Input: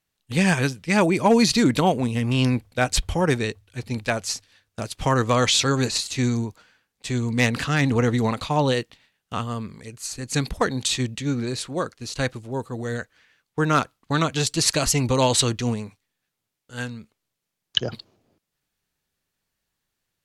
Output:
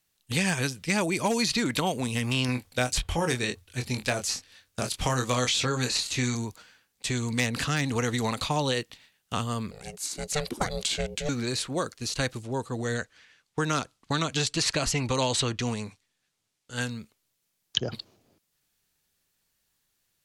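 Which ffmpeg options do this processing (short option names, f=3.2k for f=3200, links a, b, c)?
-filter_complex "[0:a]asettb=1/sr,asplit=3[a][b][c];[a]atrim=end=2.464[d];[b]atrim=start=2.46:end=6.35,asetpts=PTS-STARTPTS,afade=t=in:d=0.004:c=qsin,afade=t=out:st=3.886:d=0.004:c=qsin,asplit=2[e][f];[f]adelay=24,volume=-6dB[g];[e][g]amix=inputs=2:normalize=0,atrim=end_sample=171549[h];[c]atrim=start=6.346[i];[d][h]acrossfade=d=0.004:c1=hsin:c2=qsin[j];[j][i]acrossfade=d=0.004:c1=qsin:c2=hsin,asettb=1/sr,asplit=3[k][l][m];[k]atrim=end=9.714[n];[l]atrim=start=9.71:end=11.29,asetpts=PTS-STARTPTS,afade=t=in:d=0.004:c=qsin,afade=t=out:st=1.576:d=0.004:c=qsin,aeval=exprs='val(0)*sin(2*PI*300*n/s)':c=same[o];[m]atrim=start=11.286[p];[n][o]acrossfade=d=0.004:c1=hsin:c2=qsin[q];[q][p]acrossfade=d=0.004:c1=qsin:c2=hsin,asettb=1/sr,asplit=3[r][s][t];[r]atrim=end=12.434[u];[s]atrim=start=12.43:end=16.82,asetpts=PTS-STARTPTS,afade=t=in:d=0.004:c=qsin,afade=t=out:st=4.386:d=0.004:c=qsin,lowpass=8.7k[v];[t]atrim=start=16.816[w];[u][v]acrossfade=d=0.004:c1=hsin:c2=qsin[x];[x][w]acrossfade=d=0.004:c1=qsin:c2=hsin,acrossover=split=710|3200[y][z][aa];[y]acompressor=threshold=-28dB:ratio=4[ab];[z]acompressor=threshold=-32dB:ratio=4[ac];[aa]acompressor=threshold=-38dB:ratio=4[ad];[ab][ac][ad]amix=inputs=3:normalize=0,highshelf=f=3.4k:g=8"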